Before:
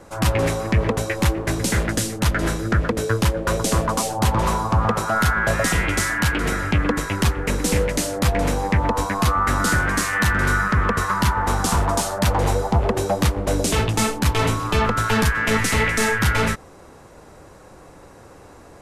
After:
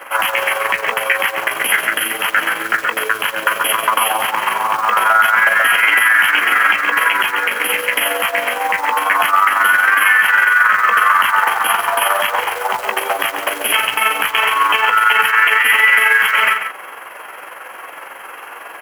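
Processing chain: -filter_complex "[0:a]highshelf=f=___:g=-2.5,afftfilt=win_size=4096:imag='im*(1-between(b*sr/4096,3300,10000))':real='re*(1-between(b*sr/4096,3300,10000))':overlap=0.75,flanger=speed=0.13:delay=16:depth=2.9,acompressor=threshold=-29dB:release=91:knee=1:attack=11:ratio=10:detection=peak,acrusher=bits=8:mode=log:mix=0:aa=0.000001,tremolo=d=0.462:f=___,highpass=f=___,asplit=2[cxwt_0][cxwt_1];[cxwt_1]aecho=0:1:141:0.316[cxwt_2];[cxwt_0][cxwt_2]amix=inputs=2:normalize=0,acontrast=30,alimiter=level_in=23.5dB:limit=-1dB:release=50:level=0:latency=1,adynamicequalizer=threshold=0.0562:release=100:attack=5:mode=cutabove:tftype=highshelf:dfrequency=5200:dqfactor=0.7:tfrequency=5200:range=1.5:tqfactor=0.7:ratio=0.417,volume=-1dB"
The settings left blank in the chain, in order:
8300, 22, 1400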